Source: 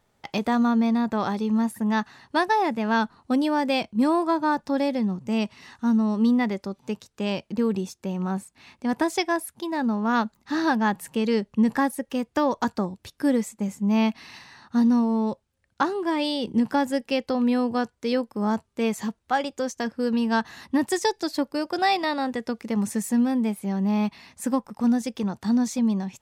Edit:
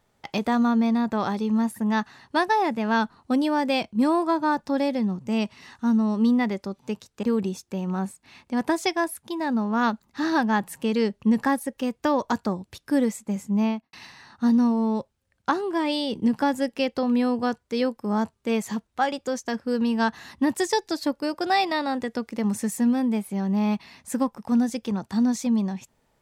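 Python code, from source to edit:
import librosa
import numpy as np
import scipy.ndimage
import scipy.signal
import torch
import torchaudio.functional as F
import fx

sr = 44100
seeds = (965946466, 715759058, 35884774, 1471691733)

y = fx.studio_fade_out(x, sr, start_s=13.86, length_s=0.39)
y = fx.edit(y, sr, fx.cut(start_s=7.23, length_s=0.32), tone=tone)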